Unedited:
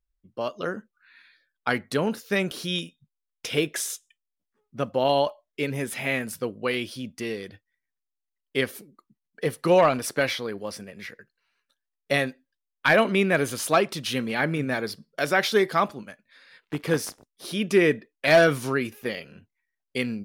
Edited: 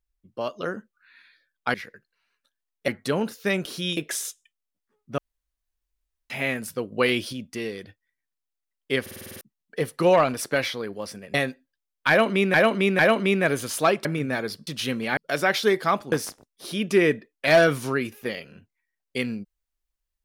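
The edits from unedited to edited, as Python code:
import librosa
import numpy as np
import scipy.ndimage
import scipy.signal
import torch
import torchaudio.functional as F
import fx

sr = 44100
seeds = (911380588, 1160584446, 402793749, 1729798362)

y = fx.edit(x, sr, fx.cut(start_s=2.83, length_s=0.79),
    fx.room_tone_fill(start_s=4.83, length_s=1.12),
    fx.clip_gain(start_s=6.57, length_s=0.41, db=5.0),
    fx.stutter_over(start_s=8.66, slice_s=0.05, count=8),
    fx.move(start_s=10.99, length_s=1.14, to_s=1.74),
    fx.repeat(start_s=12.88, length_s=0.45, count=3),
    fx.move(start_s=13.94, length_s=0.5, to_s=15.06),
    fx.cut(start_s=16.01, length_s=0.91), tone=tone)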